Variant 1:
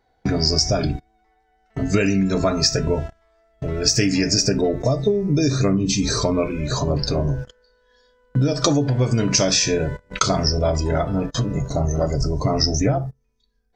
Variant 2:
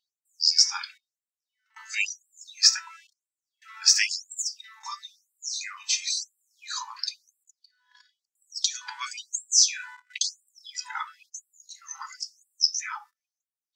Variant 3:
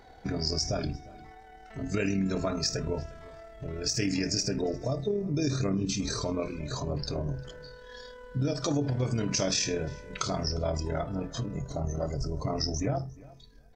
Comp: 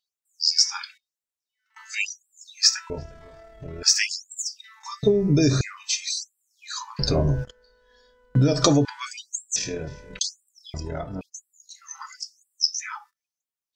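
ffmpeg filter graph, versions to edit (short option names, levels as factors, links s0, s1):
-filter_complex "[2:a]asplit=3[s0][s1][s2];[0:a]asplit=2[s3][s4];[1:a]asplit=6[s5][s6][s7][s8][s9][s10];[s5]atrim=end=2.902[s11];[s0]atrim=start=2.898:end=3.832[s12];[s6]atrim=start=3.828:end=5.032[s13];[s3]atrim=start=5.028:end=5.612[s14];[s7]atrim=start=5.608:end=6.992[s15];[s4]atrim=start=6.988:end=8.852[s16];[s8]atrim=start=8.848:end=9.562[s17];[s1]atrim=start=9.558:end=10.192[s18];[s9]atrim=start=10.188:end=10.742[s19];[s2]atrim=start=10.738:end=11.212[s20];[s10]atrim=start=11.208[s21];[s11][s12]acrossfade=d=0.004:c1=hsin:c2=hsin[s22];[s22][s13]acrossfade=d=0.004:c1=hsin:c2=hsin[s23];[s23][s14]acrossfade=d=0.004:c1=hsin:c2=hsin[s24];[s24][s15]acrossfade=d=0.004:c1=hsin:c2=hsin[s25];[s25][s16]acrossfade=d=0.004:c1=hsin:c2=hsin[s26];[s26][s17]acrossfade=d=0.004:c1=hsin:c2=hsin[s27];[s27][s18]acrossfade=d=0.004:c1=hsin:c2=hsin[s28];[s28][s19]acrossfade=d=0.004:c1=hsin:c2=hsin[s29];[s29][s20]acrossfade=d=0.004:c1=hsin:c2=hsin[s30];[s30][s21]acrossfade=d=0.004:c1=hsin:c2=hsin"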